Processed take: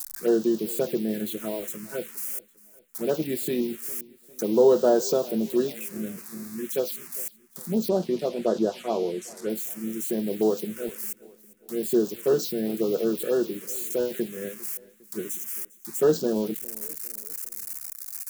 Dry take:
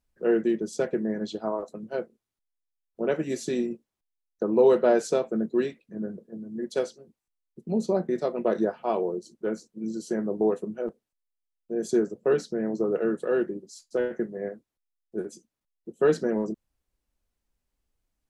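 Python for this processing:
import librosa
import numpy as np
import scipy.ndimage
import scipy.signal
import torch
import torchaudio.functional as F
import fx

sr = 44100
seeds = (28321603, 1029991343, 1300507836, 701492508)

y = x + 0.5 * 10.0 ** (-25.0 / 20.0) * np.diff(np.sign(x), prepend=np.sign(x[:1]))
y = fx.lowpass(y, sr, hz=7100.0, slope=12, at=(7.89, 9.5))
y = fx.env_phaser(y, sr, low_hz=360.0, high_hz=2200.0, full_db=-20.5)
y = fx.echo_feedback(y, sr, ms=403, feedback_pct=45, wet_db=-21.5)
y = y * 10.0 ** (1.5 / 20.0)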